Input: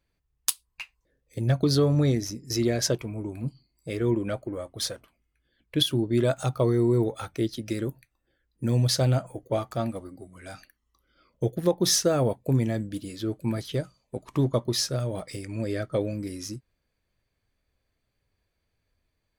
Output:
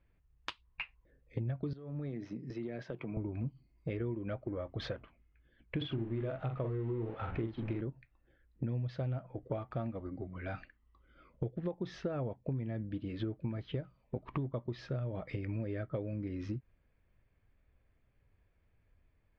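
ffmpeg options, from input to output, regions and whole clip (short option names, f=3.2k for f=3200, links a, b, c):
-filter_complex "[0:a]asettb=1/sr,asplit=3[a][b][c];[a]atrim=end=1.734[d];[b]atrim=start=1.73:end=3.17,asetpts=PTS-STARTPTS,afade=t=in:d=0.004:c=qsin,afade=t=out:st=1.436:d=0.004:c=qsin,highpass=f=140:w=0.5412,highpass=f=140:w=1.3066,acompressor=threshold=-38dB:ratio=8:attack=3.2:release=140:knee=1:detection=peak[e];[c]atrim=start=3.166[f];[d][e]acrossfade=d=0.004:c1=hsin:c2=qsin[g];[g][f]acrossfade=d=0.004:c1=qsin:c2=hsin,asettb=1/sr,asplit=3[h][i][j];[h]atrim=end=5.774[k];[i]atrim=start=5.77:end=7.81,asetpts=PTS-STARTPTS,afade=t=in:d=0.004:c=qsin,afade=t=out:st=2.036:d=0.004:c=qsin,aeval=exprs='val(0)+0.5*0.0188*sgn(val(0))':c=same,adynamicsmooth=sensitivity=5.5:basefreq=1.8k,asplit=2[l][m];[m]adelay=44,volume=-4.5dB[n];[l][n]amix=inputs=2:normalize=0,atrim=end_sample=89964[o];[j]atrim=start=7.806[p];[k][o]acrossfade=d=0.004:c1=hsin:c2=qsin[q];[q][p]acrossfade=d=0.004:c1=qsin:c2=hsin,lowpass=f=2.8k:w=0.5412,lowpass=f=2.8k:w=1.3066,lowshelf=f=150:g=7,acompressor=threshold=-35dB:ratio=10,volume=1dB"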